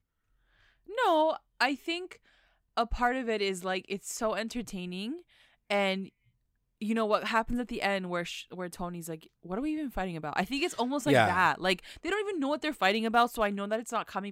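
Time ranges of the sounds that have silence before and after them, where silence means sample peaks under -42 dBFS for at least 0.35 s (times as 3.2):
0.89–2.15
2.77–5.19
5.7–6.08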